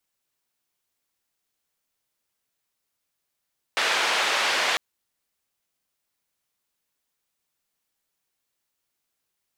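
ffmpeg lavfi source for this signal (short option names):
-f lavfi -i "anoisesrc=c=white:d=1:r=44100:seed=1,highpass=f=570,lowpass=f=3100,volume=-9.7dB"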